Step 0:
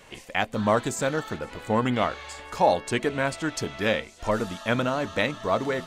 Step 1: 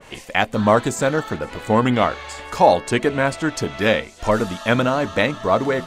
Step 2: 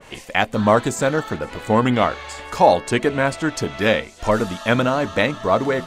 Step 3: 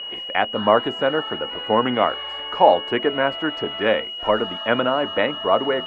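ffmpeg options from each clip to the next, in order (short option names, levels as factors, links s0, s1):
-af "adynamicequalizer=threshold=0.0112:dfrequency=2000:dqfactor=0.7:tfrequency=2000:tqfactor=0.7:attack=5:release=100:ratio=0.375:range=2:mode=cutabove:tftype=highshelf,volume=2.24"
-af anull
-filter_complex "[0:a]acrossover=split=4800[s0][s1];[s1]acompressor=threshold=0.00316:ratio=4:attack=1:release=60[s2];[s0][s2]amix=inputs=2:normalize=0,aeval=exprs='val(0)+0.0891*sin(2*PI*2900*n/s)':c=same,acrossover=split=260 2400:gain=0.2 1 0.1[s3][s4][s5];[s3][s4][s5]amix=inputs=3:normalize=0"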